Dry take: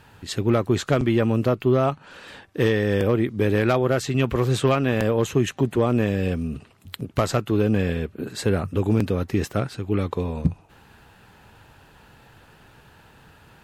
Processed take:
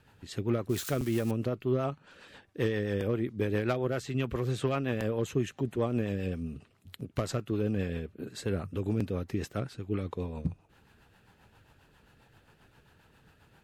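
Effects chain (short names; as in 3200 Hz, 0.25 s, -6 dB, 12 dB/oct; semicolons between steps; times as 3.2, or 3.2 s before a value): 0.69–1.31 switching spikes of -20 dBFS; rotary speaker horn 7.5 Hz; gain -8 dB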